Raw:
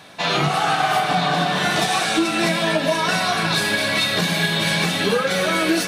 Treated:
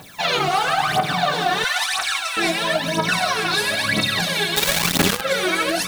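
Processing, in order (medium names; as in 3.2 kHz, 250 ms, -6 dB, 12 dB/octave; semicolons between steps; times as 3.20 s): 1.64–2.37 s: high-pass 880 Hz 24 dB/octave; word length cut 8-bit, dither triangular; phaser 1 Hz, delay 2.9 ms, feedback 76%; 4.56–5.21 s: companded quantiser 2-bit; loudness maximiser +4.5 dB; trim -8 dB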